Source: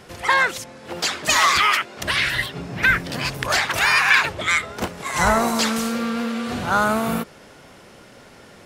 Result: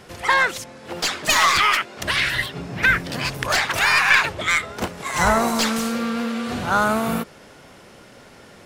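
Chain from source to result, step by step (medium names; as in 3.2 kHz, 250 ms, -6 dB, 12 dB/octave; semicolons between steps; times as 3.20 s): tracing distortion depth 0.032 ms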